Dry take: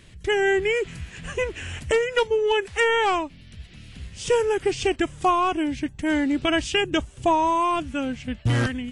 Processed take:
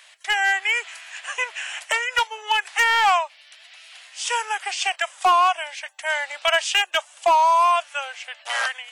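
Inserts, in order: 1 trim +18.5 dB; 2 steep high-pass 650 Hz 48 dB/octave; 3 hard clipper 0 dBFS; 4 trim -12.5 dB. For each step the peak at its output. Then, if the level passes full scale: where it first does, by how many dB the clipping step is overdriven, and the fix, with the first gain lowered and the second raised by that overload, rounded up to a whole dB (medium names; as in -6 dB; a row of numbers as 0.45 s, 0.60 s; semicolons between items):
+8.0 dBFS, +8.0 dBFS, 0.0 dBFS, -12.5 dBFS; step 1, 8.0 dB; step 1 +10.5 dB, step 4 -4.5 dB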